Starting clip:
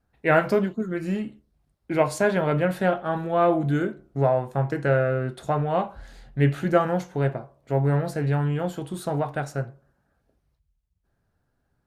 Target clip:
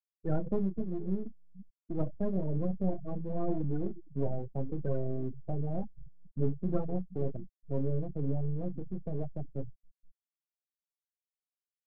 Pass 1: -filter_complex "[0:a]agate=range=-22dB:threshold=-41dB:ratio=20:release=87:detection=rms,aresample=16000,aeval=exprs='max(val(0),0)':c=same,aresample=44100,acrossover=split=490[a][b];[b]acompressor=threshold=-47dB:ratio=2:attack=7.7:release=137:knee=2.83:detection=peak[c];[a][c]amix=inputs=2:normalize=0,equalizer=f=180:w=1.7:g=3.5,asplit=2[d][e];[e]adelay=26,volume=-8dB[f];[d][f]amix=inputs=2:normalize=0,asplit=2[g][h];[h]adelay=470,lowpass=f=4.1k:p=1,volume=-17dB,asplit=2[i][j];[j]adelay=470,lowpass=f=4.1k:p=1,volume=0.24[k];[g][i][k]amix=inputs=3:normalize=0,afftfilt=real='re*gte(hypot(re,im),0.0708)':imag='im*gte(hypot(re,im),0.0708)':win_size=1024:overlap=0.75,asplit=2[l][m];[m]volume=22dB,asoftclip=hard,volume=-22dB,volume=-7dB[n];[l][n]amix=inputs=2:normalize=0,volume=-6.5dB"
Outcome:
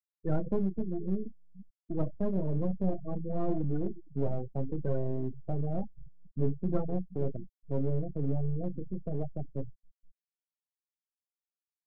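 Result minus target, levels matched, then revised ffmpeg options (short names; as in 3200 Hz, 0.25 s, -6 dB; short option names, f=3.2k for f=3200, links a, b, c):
overloaded stage: distortion -5 dB
-filter_complex "[0:a]agate=range=-22dB:threshold=-41dB:ratio=20:release=87:detection=rms,aresample=16000,aeval=exprs='max(val(0),0)':c=same,aresample=44100,acrossover=split=490[a][b];[b]acompressor=threshold=-47dB:ratio=2:attack=7.7:release=137:knee=2.83:detection=peak[c];[a][c]amix=inputs=2:normalize=0,equalizer=f=180:w=1.7:g=3.5,asplit=2[d][e];[e]adelay=26,volume=-8dB[f];[d][f]amix=inputs=2:normalize=0,asplit=2[g][h];[h]adelay=470,lowpass=f=4.1k:p=1,volume=-17dB,asplit=2[i][j];[j]adelay=470,lowpass=f=4.1k:p=1,volume=0.24[k];[g][i][k]amix=inputs=3:normalize=0,afftfilt=real='re*gte(hypot(re,im),0.0708)':imag='im*gte(hypot(re,im),0.0708)':win_size=1024:overlap=0.75,asplit=2[l][m];[m]volume=29.5dB,asoftclip=hard,volume=-29.5dB,volume=-7dB[n];[l][n]amix=inputs=2:normalize=0,volume=-6.5dB"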